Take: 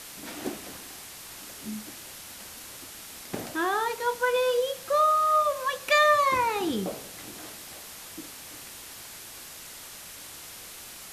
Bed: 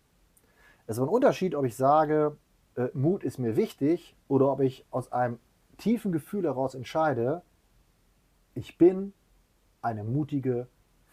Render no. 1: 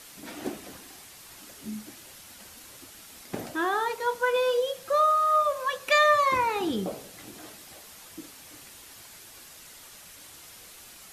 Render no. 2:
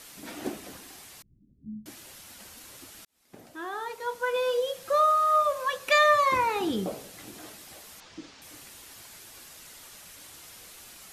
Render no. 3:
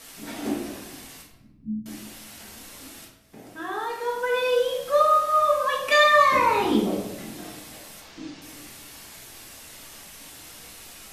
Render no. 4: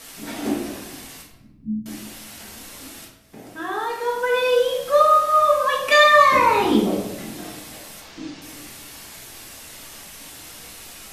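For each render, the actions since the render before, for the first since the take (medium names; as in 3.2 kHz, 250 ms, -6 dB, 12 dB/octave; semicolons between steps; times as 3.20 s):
noise reduction 6 dB, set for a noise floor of -44 dBFS
1.22–1.86 s: inverse Chebyshev low-pass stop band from 1.3 kHz, stop band 80 dB; 3.05–4.86 s: fade in; 8.00–8.42 s: low-pass 5.9 kHz 24 dB/octave
simulated room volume 290 m³, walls mixed, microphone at 1.6 m
trim +4 dB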